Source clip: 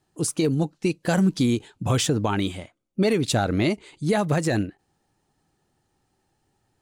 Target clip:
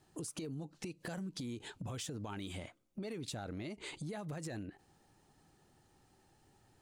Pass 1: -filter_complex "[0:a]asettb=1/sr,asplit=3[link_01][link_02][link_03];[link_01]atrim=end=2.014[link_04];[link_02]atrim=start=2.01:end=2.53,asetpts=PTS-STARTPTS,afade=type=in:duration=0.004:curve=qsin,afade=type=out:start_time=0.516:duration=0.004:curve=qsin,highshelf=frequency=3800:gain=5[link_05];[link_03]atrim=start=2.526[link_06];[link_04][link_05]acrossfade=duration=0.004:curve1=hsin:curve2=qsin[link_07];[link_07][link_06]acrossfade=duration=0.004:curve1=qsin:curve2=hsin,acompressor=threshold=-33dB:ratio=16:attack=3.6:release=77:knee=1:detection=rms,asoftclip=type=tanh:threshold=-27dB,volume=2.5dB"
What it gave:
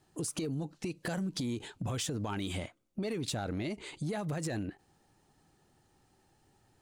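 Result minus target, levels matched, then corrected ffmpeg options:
downward compressor: peak gain reduction −8 dB
-filter_complex "[0:a]asettb=1/sr,asplit=3[link_01][link_02][link_03];[link_01]atrim=end=2.014[link_04];[link_02]atrim=start=2.01:end=2.53,asetpts=PTS-STARTPTS,afade=type=in:duration=0.004:curve=qsin,afade=type=out:start_time=0.516:duration=0.004:curve=qsin,highshelf=frequency=3800:gain=5[link_05];[link_03]atrim=start=2.526[link_06];[link_04][link_05]acrossfade=duration=0.004:curve1=hsin:curve2=qsin[link_07];[link_07][link_06]acrossfade=duration=0.004:curve1=qsin:curve2=hsin,acompressor=threshold=-41.5dB:ratio=16:attack=3.6:release=77:knee=1:detection=rms,asoftclip=type=tanh:threshold=-27dB,volume=2.5dB"

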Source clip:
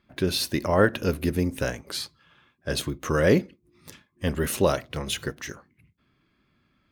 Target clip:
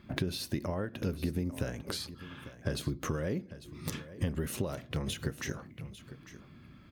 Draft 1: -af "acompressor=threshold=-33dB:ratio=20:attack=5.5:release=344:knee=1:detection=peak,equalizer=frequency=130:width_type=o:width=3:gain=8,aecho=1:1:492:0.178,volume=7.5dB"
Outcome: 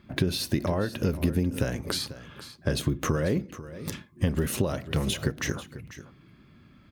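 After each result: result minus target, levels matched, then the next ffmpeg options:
echo 357 ms early; downward compressor: peak gain reduction −7.5 dB
-af "acompressor=threshold=-33dB:ratio=20:attack=5.5:release=344:knee=1:detection=peak,equalizer=frequency=130:width_type=o:width=3:gain=8,aecho=1:1:849:0.178,volume=7.5dB"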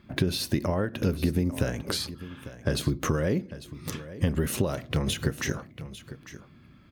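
downward compressor: peak gain reduction −7.5 dB
-af "acompressor=threshold=-41dB:ratio=20:attack=5.5:release=344:knee=1:detection=peak,equalizer=frequency=130:width_type=o:width=3:gain=8,aecho=1:1:849:0.178,volume=7.5dB"

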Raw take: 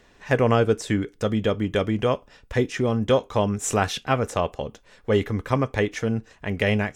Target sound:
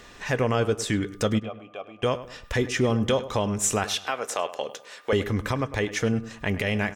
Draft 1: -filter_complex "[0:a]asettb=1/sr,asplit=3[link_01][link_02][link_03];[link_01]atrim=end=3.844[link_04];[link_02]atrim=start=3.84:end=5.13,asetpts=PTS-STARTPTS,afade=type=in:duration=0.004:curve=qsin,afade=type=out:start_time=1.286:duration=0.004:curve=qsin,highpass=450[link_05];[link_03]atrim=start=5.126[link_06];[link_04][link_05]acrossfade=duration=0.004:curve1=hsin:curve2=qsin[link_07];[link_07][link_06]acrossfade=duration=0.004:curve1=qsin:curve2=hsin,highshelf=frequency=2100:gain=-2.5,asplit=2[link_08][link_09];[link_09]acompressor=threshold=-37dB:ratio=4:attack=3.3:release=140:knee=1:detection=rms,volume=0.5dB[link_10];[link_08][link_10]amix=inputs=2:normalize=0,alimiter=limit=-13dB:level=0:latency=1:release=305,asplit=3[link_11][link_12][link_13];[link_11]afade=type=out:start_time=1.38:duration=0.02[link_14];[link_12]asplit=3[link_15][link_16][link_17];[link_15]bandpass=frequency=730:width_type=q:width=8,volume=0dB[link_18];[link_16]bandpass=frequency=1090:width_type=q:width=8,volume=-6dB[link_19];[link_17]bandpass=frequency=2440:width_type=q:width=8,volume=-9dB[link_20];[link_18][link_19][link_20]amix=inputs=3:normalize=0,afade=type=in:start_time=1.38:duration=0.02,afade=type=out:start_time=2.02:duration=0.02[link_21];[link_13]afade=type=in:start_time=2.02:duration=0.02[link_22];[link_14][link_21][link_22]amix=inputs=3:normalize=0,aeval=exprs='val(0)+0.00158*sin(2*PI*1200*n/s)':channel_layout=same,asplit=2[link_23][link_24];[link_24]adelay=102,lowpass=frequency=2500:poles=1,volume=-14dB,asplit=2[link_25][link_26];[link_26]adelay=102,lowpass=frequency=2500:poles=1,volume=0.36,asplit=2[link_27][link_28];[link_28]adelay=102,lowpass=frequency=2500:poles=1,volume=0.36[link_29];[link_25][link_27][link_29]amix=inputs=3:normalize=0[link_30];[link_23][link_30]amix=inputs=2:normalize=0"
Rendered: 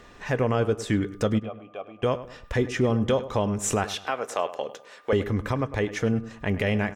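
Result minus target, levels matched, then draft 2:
4,000 Hz band −4.5 dB
-filter_complex "[0:a]asettb=1/sr,asplit=3[link_01][link_02][link_03];[link_01]atrim=end=3.844[link_04];[link_02]atrim=start=3.84:end=5.13,asetpts=PTS-STARTPTS,afade=type=in:duration=0.004:curve=qsin,afade=type=out:start_time=1.286:duration=0.004:curve=qsin,highpass=450[link_05];[link_03]atrim=start=5.126[link_06];[link_04][link_05]acrossfade=duration=0.004:curve1=hsin:curve2=qsin[link_07];[link_07][link_06]acrossfade=duration=0.004:curve1=qsin:curve2=hsin,highshelf=frequency=2100:gain=6,asplit=2[link_08][link_09];[link_09]acompressor=threshold=-37dB:ratio=4:attack=3.3:release=140:knee=1:detection=rms,volume=0.5dB[link_10];[link_08][link_10]amix=inputs=2:normalize=0,alimiter=limit=-13dB:level=0:latency=1:release=305,asplit=3[link_11][link_12][link_13];[link_11]afade=type=out:start_time=1.38:duration=0.02[link_14];[link_12]asplit=3[link_15][link_16][link_17];[link_15]bandpass=frequency=730:width_type=q:width=8,volume=0dB[link_18];[link_16]bandpass=frequency=1090:width_type=q:width=8,volume=-6dB[link_19];[link_17]bandpass=frequency=2440:width_type=q:width=8,volume=-9dB[link_20];[link_18][link_19][link_20]amix=inputs=3:normalize=0,afade=type=in:start_time=1.38:duration=0.02,afade=type=out:start_time=2.02:duration=0.02[link_21];[link_13]afade=type=in:start_time=2.02:duration=0.02[link_22];[link_14][link_21][link_22]amix=inputs=3:normalize=0,aeval=exprs='val(0)+0.00158*sin(2*PI*1200*n/s)':channel_layout=same,asplit=2[link_23][link_24];[link_24]adelay=102,lowpass=frequency=2500:poles=1,volume=-14dB,asplit=2[link_25][link_26];[link_26]adelay=102,lowpass=frequency=2500:poles=1,volume=0.36,asplit=2[link_27][link_28];[link_28]adelay=102,lowpass=frequency=2500:poles=1,volume=0.36[link_29];[link_25][link_27][link_29]amix=inputs=3:normalize=0[link_30];[link_23][link_30]amix=inputs=2:normalize=0"

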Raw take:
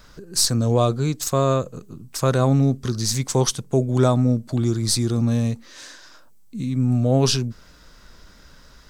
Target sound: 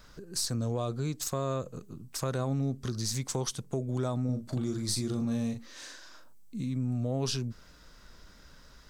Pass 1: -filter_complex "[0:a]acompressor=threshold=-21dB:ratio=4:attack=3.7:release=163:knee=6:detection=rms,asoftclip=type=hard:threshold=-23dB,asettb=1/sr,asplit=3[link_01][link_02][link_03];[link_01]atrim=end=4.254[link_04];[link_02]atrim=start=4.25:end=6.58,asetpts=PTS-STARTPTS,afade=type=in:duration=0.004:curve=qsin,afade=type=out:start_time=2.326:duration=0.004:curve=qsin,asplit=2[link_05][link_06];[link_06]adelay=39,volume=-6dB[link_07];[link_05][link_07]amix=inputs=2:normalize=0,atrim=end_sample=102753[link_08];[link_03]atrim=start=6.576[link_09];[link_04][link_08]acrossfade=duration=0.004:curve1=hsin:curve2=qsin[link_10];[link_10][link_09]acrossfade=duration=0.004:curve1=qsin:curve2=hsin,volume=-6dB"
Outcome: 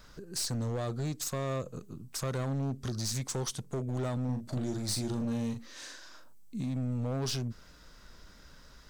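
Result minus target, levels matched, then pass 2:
hard clipping: distortion +33 dB
-filter_complex "[0:a]acompressor=threshold=-21dB:ratio=4:attack=3.7:release=163:knee=6:detection=rms,asoftclip=type=hard:threshold=-15dB,asettb=1/sr,asplit=3[link_01][link_02][link_03];[link_01]atrim=end=4.254[link_04];[link_02]atrim=start=4.25:end=6.58,asetpts=PTS-STARTPTS,afade=type=in:duration=0.004:curve=qsin,afade=type=out:start_time=2.326:duration=0.004:curve=qsin,asplit=2[link_05][link_06];[link_06]adelay=39,volume=-6dB[link_07];[link_05][link_07]amix=inputs=2:normalize=0,atrim=end_sample=102753[link_08];[link_03]atrim=start=6.576[link_09];[link_04][link_08]acrossfade=duration=0.004:curve1=hsin:curve2=qsin[link_10];[link_10][link_09]acrossfade=duration=0.004:curve1=qsin:curve2=hsin,volume=-6dB"

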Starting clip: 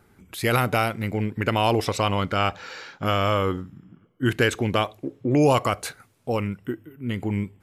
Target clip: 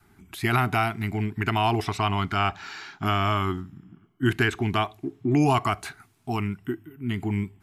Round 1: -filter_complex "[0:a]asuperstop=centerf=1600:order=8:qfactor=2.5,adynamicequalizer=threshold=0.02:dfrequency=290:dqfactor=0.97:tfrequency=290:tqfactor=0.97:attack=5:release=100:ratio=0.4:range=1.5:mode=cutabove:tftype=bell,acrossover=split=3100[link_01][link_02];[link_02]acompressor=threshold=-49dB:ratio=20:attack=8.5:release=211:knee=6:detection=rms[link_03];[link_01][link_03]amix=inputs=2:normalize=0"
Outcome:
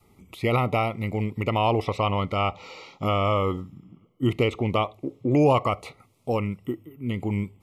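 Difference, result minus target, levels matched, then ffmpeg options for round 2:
downward compressor: peak gain reduction +10.5 dB; 2,000 Hz band −5.5 dB
-filter_complex "[0:a]asuperstop=centerf=520:order=8:qfactor=2.5,adynamicequalizer=threshold=0.02:dfrequency=290:dqfactor=0.97:tfrequency=290:tqfactor=0.97:attack=5:release=100:ratio=0.4:range=1.5:mode=cutabove:tftype=bell,acrossover=split=3100[link_01][link_02];[link_02]acompressor=threshold=-38dB:ratio=20:attack=8.5:release=211:knee=6:detection=rms[link_03];[link_01][link_03]amix=inputs=2:normalize=0"

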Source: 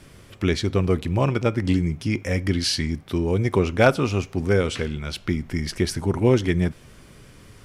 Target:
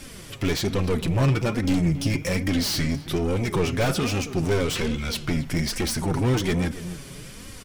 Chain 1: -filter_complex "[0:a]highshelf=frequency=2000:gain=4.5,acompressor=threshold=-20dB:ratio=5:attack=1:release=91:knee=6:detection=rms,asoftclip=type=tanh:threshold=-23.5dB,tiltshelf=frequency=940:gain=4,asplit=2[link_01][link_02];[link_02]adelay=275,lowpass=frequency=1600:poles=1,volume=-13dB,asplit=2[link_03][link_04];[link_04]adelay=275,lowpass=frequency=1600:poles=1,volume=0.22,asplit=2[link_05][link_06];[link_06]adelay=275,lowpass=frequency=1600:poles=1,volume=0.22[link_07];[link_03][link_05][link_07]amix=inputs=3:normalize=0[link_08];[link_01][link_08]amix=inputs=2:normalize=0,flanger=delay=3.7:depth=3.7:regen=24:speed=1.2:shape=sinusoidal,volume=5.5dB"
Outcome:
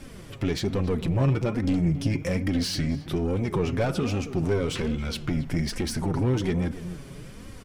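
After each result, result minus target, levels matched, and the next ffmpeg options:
downward compressor: peak gain reduction +12 dB; 2,000 Hz band −4.0 dB
-filter_complex "[0:a]highshelf=frequency=2000:gain=4.5,asoftclip=type=tanh:threshold=-23.5dB,tiltshelf=frequency=940:gain=4,asplit=2[link_01][link_02];[link_02]adelay=275,lowpass=frequency=1600:poles=1,volume=-13dB,asplit=2[link_03][link_04];[link_04]adelay=275,lowpass=frequency=1600:poles=1,volume=0.22,asplit=2[link_05][link_06];[link_06]adelay=275,lowpass=frequency=1600:poles=1,volume=0.22[link_07];[link_03][link_05][link_07]amix=inputs=3:normalize=0[link_08];[link_01][link_08]amix=inputs=2:normalize=0,flanger=delay=3.7:depth=3.7:regen=24:speed=1.2:shape=sinusoidal,volume=5.5dB"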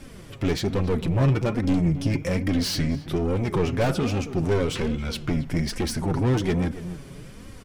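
2,000 Hz band −3.5 dB
-filter_complex "[0:a]highshelf=frequency=2000:gain=15.5,asoftclip=type=tanh:threshold=-23.5dB,tiltshelf=frequency=940:gain=4,asplit=2[link_01][link_02];[link_02]adelay=275,lowpass=frequency=1600:poles=1,volume=-13dB,asplit=2[link_03][link_04];[link_04]adelay=275,lowpass=frequency=1600:poles=1,volume=0.22,asplit=2[link_05][link_06];[link_06]adelay=275,lowpass=frequency=1600:poles=1,volume=0.22[link_07];[link_03][link_05][link_07]amix=inputs=3:normalize=0[link_08];[link_01][link_08]amix=inputs=2:normalize=0,flanger=delay=3.7:depth=3.7:regen=24:speed=1.2:shape=sinusoidal,volume=5.5dB"

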